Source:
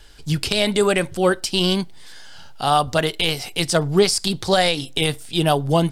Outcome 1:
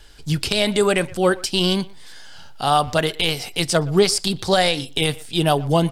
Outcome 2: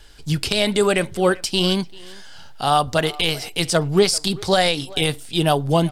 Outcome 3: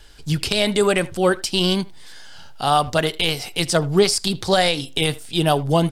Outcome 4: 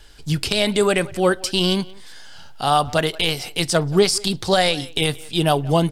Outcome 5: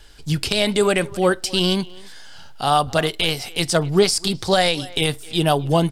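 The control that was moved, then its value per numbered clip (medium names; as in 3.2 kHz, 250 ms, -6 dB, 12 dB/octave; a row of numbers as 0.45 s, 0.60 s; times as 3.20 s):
speakerphone echo, time: 120 ms, 390 ms, 80 ms, 180 ms, 260 ms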